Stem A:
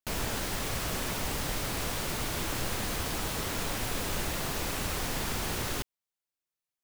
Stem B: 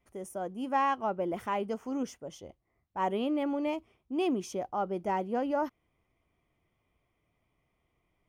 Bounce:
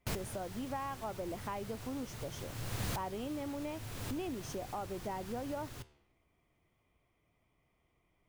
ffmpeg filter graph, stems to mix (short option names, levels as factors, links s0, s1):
-filter_complex "[0:a]flanger=delay=9.9:depth=5.6:regen=86:speed=0.73:shape=triangular,equalizer=f=110:t=o:w=0.81:g=13,volume=1[s0];[1:a]acompressor=threshold=0.0112:ratio=5,volume=1.06,asplit=2[s1][s2];[s2]apad=whole_len=301295[s3];[s0][s3]sidechaincompress=threshold=0.00282:ratio=8:attack=6.2:release=558[s4];[s4][s1]amix=inputs=2:normalize=0"